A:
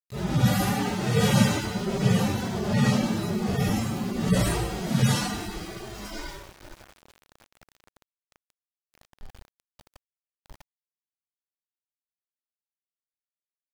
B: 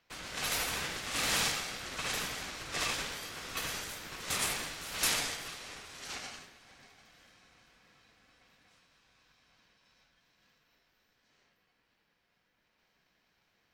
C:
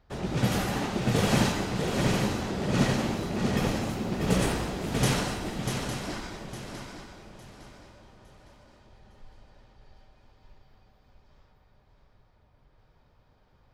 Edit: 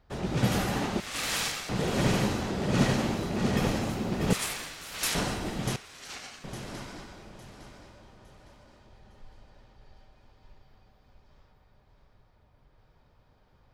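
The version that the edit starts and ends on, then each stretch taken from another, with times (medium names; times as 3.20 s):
C
1.00–1.69 s: from B
4.33–5.15 s: from B
5.76–6.44 s: from B
not used: A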